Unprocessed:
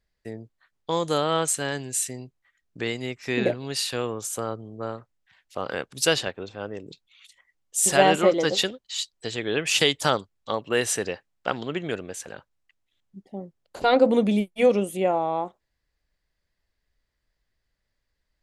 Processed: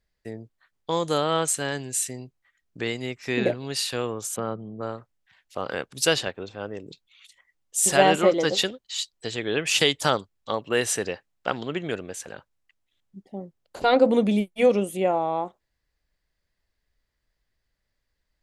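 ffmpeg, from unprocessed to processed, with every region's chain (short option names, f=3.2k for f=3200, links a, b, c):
-filter_complex "[0:a]asettb=1/sr,asplit=3[a][b][c];[a]atrim=end=4.364[d];[b]atrim=start=4.36:end=4.81,asetpts=PTS-STARTPTS,afade=t=in:d=0.004:c=qsin,afade=t=out:st=0.446:d=0.004:c=qsin,lowpass=f=3.6k:w=0.5412,lowpass=f=3.6k:w=1.3066,equalizer=f=190:t=o:w=0.25:g=14[e];[c]atrim=start=4.806[f];[d][e]acrossfade=d=0.004:c1=hsin:c2=qsin[g];[g][f]acrossfade=d=0.004:c1=qsin:c2=hsin"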